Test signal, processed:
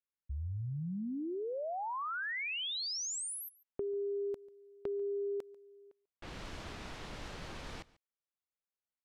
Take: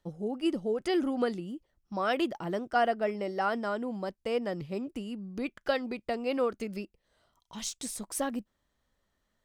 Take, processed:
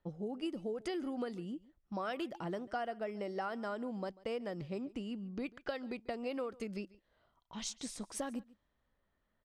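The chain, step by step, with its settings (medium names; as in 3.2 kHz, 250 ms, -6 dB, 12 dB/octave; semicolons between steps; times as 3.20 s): level-controlled noise filter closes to 2.6 kHz, open at -28 dBFS; compression 6:1, threshold -33 dBFS; delay 142 ms -22 dB; trim -2.5 dB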